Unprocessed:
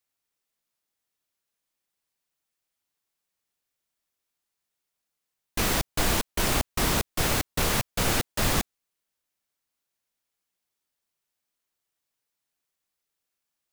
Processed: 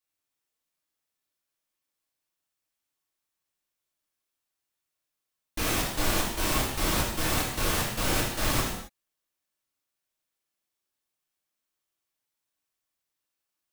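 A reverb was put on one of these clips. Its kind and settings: non-linear reverb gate 0.29 s falling, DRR -4.5 dB; gain -7 dB

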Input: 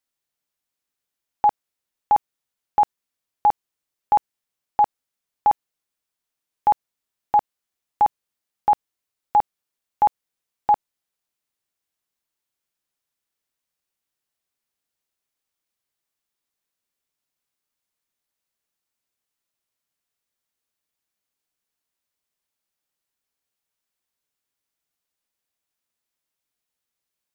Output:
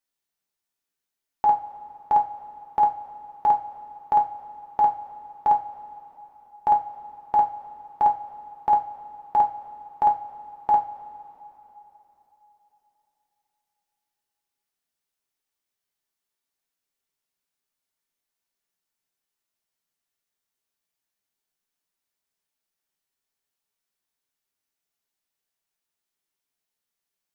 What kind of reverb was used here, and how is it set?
two-slope reverb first 0.27 s, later 3.7 s, from -21 dB, DRR 1 dB; gain -4 dB

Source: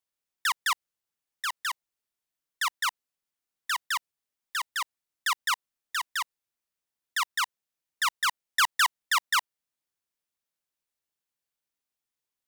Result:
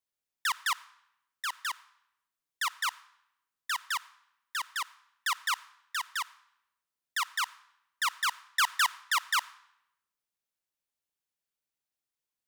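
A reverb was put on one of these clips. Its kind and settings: digital reverb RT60 0.82 s, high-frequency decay 0.9×, pre-delay 15 ms, DRR 20 dB; gain -3 dB

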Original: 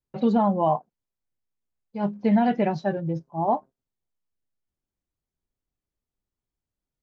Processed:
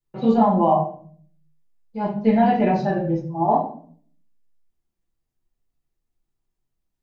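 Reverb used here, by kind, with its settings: shoebox room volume 51 m³, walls mixed, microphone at 1.3 m; gain -3 dB

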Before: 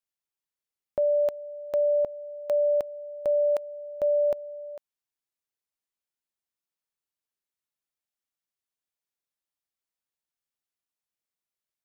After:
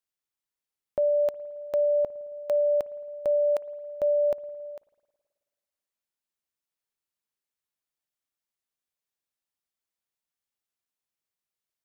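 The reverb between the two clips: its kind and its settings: spring tank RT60 1.6 s, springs 54 ms, chirp 75 ms, DRR 18.5 dB

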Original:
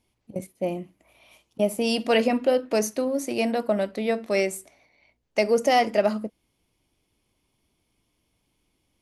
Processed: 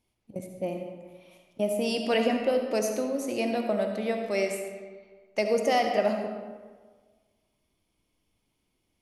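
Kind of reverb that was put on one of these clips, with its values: digital reverb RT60 1.5 s, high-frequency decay 0.6×, pre-delay 30 ms, DRR 4 dB; gain -5 dB

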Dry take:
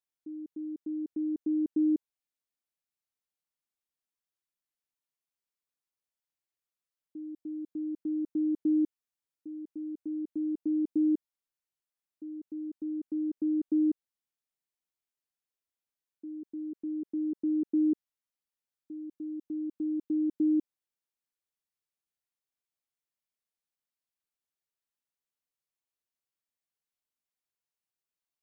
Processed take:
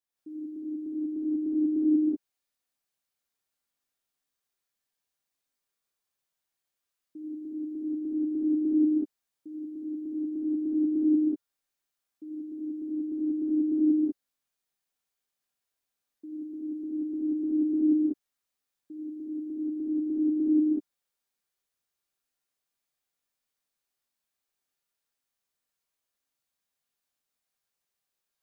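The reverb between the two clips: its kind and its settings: non-linear reverb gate 0.21 s rising, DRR -8 dB; gain -1.5 dB

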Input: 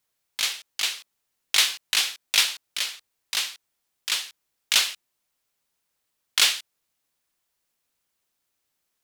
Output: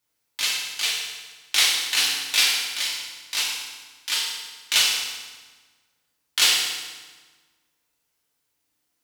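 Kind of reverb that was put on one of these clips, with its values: FDN reverb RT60 1.4 s, low-frequency decay 1.3×, high-frequency decay 0.85×, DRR -4.5 dB; gain -3 dB

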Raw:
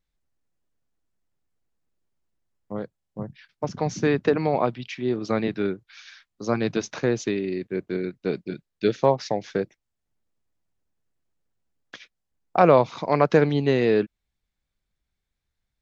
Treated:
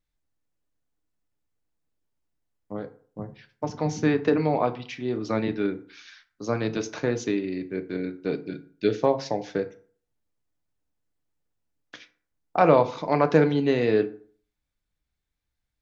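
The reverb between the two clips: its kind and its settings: FDN reverb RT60 0.47 s, low-frequency decay 1×, high-frequency decay 0.6×, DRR 7.5 dB; gain -2.5 dB

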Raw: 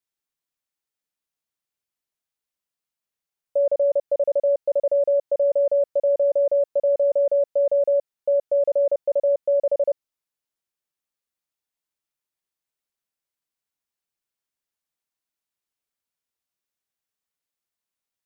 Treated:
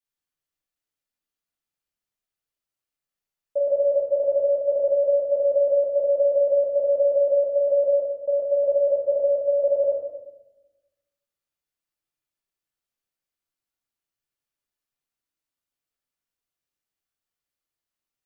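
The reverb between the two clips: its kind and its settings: shoebox room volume 410 m³, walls mixed, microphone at 2.5 m; gain -7.5 dB

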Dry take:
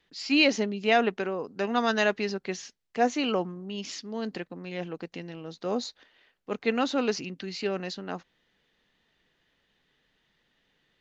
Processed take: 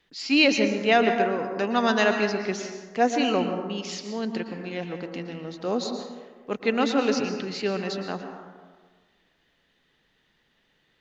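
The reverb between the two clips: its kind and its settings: plate-style reverb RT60 1.5 s, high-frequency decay 0.4×, pre-delay 0.105 s, DRR 5.5 dB; gain +2.5 dB

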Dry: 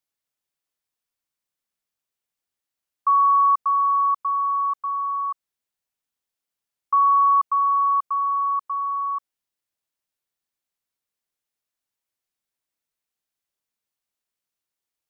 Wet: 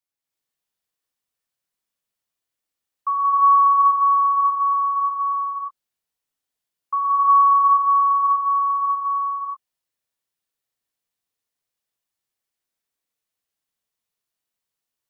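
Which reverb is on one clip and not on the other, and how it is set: non-linear reverb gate 0.39 s rising, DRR -5 dB; gain -4.5 dB

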